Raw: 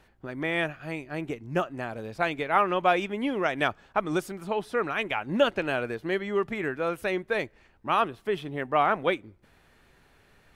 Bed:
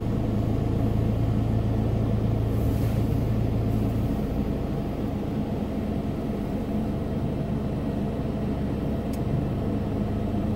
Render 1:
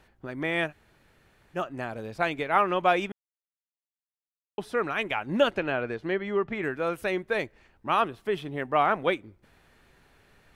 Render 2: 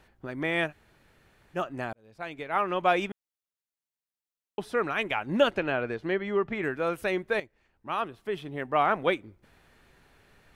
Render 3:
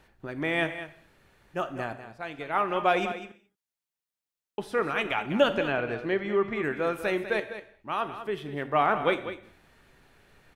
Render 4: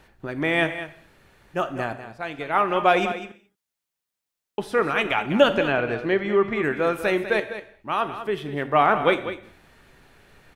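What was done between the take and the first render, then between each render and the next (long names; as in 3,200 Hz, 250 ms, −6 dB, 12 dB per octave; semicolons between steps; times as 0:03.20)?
0:00.69–0:01.58: fill with room tone, crossfade 0.10 s; 0:03.12–0:04.58: silence; 0:05.51–0:06.63: treble cut that deepens with the level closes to 1,900 Hz, closed at −22 dBFS
0:01.93–0:03.02: fade in; 0:07.40–0:09.05: fade in, from −13.5 dB
on a send: single-tap delay 198 ms −11.5 dB; on the sum: reverb whose tail is shaped and stops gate 250 ms falling, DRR 10.5 dB
level +5.5 dB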